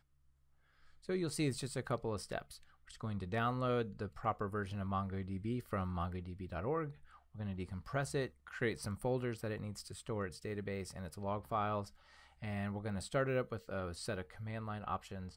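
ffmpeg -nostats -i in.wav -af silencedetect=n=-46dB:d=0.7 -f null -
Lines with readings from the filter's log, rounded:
silence_start: 0.00
silence_end: 1.09 | silence_duration: 1.09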